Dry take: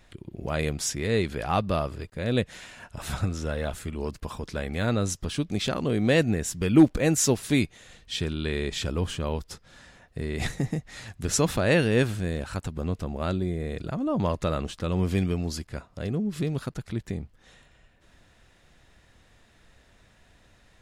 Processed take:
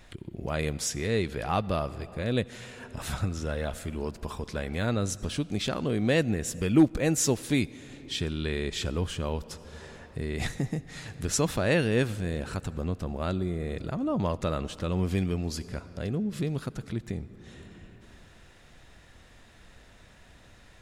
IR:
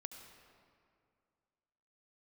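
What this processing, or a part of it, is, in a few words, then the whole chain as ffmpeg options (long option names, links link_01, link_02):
ducked reverb: -filter_complex "[0:a]asplit=3[link_01][link_02][link_03];[1:a]atrim=start_sample=2205[link_04];[link_02][link_04]afir=irnorm=-1:irlink=0[link_05];[link_03]apad=whole_len=917920[link_06];[link_05][link_06]sidechaincompress=threshold=-41dB:ratio=4:attack=8.1:release=529,volume=8.5dB[link_07];[link_01][link_07]amix=inputs=2:normalize=0,volume=-4dB"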